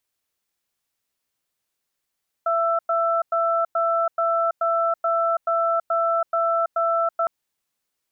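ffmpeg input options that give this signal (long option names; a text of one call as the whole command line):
ffmpeg -f lavfi -i "aevalsrc='0.0891*(sin(2*PI*670*t)+sin(2*PI*1330*t))*clip(min(mod(t,0.43),0.33-mod(t,0.43))/0.005,0,1)':duration=4.81:sample_rate=44100" out.wav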